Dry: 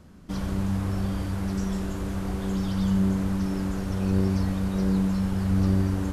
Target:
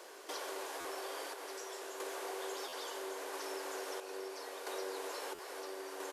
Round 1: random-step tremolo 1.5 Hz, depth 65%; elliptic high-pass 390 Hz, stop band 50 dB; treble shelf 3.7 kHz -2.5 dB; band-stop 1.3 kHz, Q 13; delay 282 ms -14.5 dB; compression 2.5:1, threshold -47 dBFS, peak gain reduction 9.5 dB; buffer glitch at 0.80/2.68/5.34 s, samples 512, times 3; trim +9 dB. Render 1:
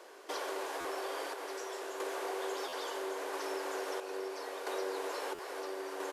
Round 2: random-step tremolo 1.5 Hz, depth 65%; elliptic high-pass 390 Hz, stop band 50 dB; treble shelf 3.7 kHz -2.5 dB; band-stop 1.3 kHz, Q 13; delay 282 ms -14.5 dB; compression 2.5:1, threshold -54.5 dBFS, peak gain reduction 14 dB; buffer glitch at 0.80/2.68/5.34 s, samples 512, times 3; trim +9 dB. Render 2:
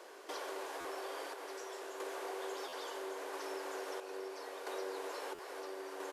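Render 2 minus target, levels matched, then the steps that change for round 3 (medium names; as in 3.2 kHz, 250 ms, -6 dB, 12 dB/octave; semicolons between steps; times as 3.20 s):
8 kHz band -4.5 dB
change: treble shelf 3.7 kHz +4.5 dB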